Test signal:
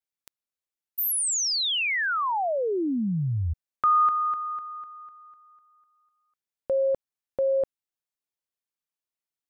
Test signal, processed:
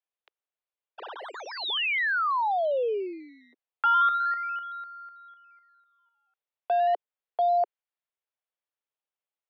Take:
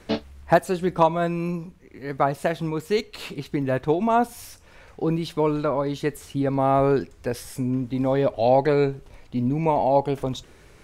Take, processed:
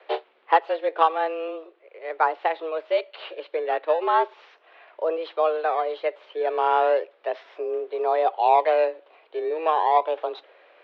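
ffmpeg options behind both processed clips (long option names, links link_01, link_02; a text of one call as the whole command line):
ffmpeg -i in.wav -filter_complex "[0:a]asplit=2[link_01][link_02];[link_02]acrusher=samples=16:mix=1:aa=0.000001:lfo=1:lforange=16:lforate=0.35,volume=-11.5dB[link_03];[link_01][link_03]amix=inputs=2:normalize=0,highpass=frequency=250:width_type=q:width=0.5412,highpass=frequency=250:width_type=q:width=1.307,lowpass=frequency=3500:width_type=q:width=0.5176,lowpass=frequency=3500:width_type=q:width=0.7071,lowpass=frequency=3500:width_type=q:width=1.932,afreqshift=160,volume=-1.5dB" out.wav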